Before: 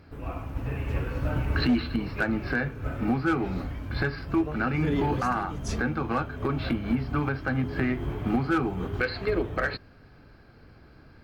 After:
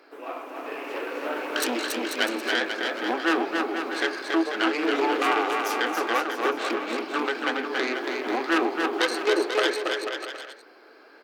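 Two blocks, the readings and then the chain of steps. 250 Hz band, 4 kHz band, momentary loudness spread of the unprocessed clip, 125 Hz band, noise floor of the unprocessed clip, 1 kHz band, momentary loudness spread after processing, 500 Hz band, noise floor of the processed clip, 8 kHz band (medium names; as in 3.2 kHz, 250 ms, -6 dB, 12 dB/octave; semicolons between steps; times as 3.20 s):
-1.5 dB, +11.5 dB, 7 LU, under -30 dB, -53 dBFS, +5.5 dB, 10 LU, +5.5 dB, -51 dBFS, +12.0 dB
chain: self-modulated delay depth 0.18 ms; steep high-pass 330 Hz 36 dB/octave; on a send: bouncing-ball echo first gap 280 ms, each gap 0.75×, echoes 5; on the sum: trim +4.5 dB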